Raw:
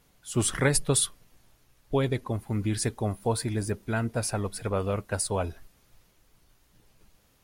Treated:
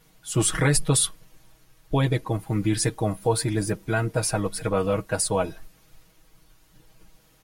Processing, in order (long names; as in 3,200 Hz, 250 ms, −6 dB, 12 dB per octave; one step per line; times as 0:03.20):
comb filter 6.3 ms, depth 86%
in parallel at +1 dB: brickwall limiter −16.5 dBFS, peak gain reduction 8.5 dB
on the sum: level −3.5 dB